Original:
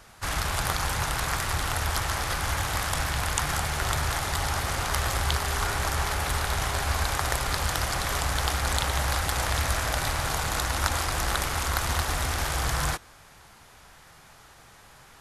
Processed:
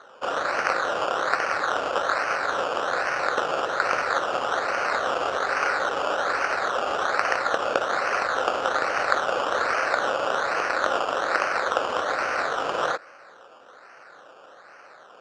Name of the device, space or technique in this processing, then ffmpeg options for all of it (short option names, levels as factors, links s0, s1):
circuit-bent sampling toy: -af "acrusher=samples=17:mix=1:aa=0.000001:lfo=1:lforange=10.2:lforate=1.2,highpass=520,equalizer=f=530:t=q:w=4:g=7,equalizer=f=920:t=q:w=4:g=-5,equalizer=f=1400:t=q:w=4:g=6,equalizer=f=2100:t=q:w=4:g=-4,equalizer=f=3400:t=q:w=4:g=-6,equalizer=f=5000:t=q:w=4:g=-7,lowpass=f=5600:w=0.5412,lowpass=f=5600:w=1.3066,volume=1.88"